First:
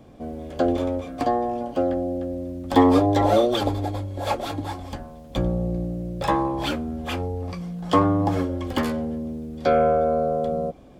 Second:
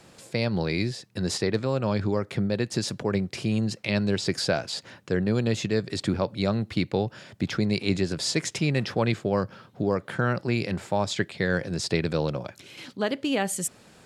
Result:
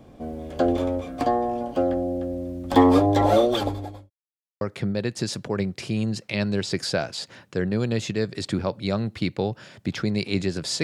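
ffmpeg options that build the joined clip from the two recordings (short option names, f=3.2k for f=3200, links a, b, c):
-filter_complex "[0:a]apad=whole_dur=10.83,atrim=end=10.83,asplit=2[a][b];[a]atrim=end=4.1,asetpts=PTS-STARTPTS,afade=t=out:st=3.51:d=0.59[c];[b]atrim=start=4.1:end=4.61,asetpts=PTS-STARTPTS,volume=0[d];[1:a]atrim=start=2.16:end=8.38,asetpts=PTS-STARTPTS,afade=t=in:d=0.004:c=hsin[e];[c][d][e]concat=n=3:v=0:a=1"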